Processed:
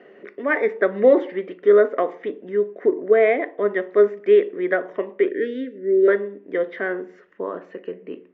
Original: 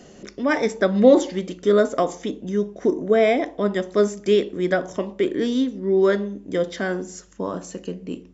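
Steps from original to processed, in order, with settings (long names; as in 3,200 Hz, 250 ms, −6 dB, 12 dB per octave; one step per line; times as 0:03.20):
0:05.29–0:06.08: Chebyshev band-stop filter 610–1,400 Hz, order 5
loudspeaker in its box 390–2,400 Hz, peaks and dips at 410 Hz +7 dB, 840 Hz −5 dB, 1,900 Hz +7 dB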